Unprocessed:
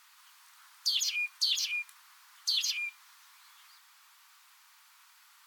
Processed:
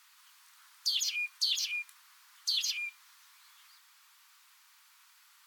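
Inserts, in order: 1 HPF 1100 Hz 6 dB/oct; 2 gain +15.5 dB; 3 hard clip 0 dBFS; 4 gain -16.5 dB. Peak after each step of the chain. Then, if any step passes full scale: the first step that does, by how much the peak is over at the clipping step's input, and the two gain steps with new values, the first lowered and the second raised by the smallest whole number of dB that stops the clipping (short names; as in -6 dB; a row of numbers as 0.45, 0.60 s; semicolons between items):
-17.0, -1.5, -1.5, -18.0 dBFS; no overload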